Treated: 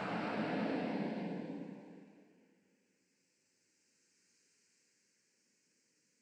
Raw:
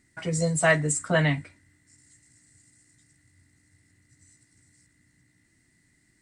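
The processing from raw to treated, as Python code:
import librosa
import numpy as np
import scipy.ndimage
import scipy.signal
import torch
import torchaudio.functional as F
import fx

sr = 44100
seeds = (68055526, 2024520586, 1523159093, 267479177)

y = fx.stiff_resonator(x, sr, f0_hz=280.0, decay_s=0.48, stiffness=0.03)
y = fx.noise_vocoder(y, sr, seeds[0], bands=8)
y = fx.paulstretch(y, sr, seeds[1], factor=4.7, window_s=0.5, from_s=1.19)
y = y * 10.0 ** (2.5 / 20.0)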